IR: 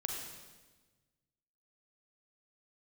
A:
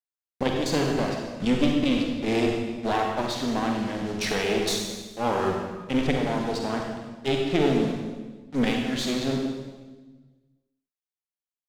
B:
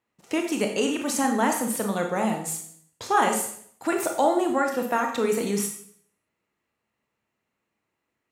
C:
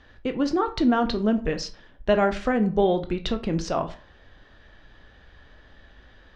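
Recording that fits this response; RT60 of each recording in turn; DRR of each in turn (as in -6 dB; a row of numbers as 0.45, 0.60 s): A; 1.3, 0.60, 0.40 s; 0.5, 2.5, 7.5 dB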